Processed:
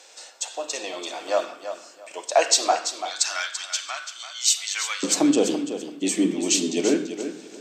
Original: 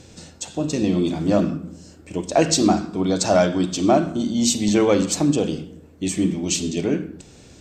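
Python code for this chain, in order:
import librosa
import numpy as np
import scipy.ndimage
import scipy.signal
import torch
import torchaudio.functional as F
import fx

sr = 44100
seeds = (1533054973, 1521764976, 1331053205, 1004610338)

y = fx.highpass(x, sr, hz=fx.steps((0.0, 600.0), (2.92, 1400.0), (5.03, 260.0)), slope=24)
y = fx.echo_feedback(y, sr, ms=337, feedback_pct=23, wet_db=-10.0)
y = F.gain(torch.from_numpy(y), 2.0).numpy()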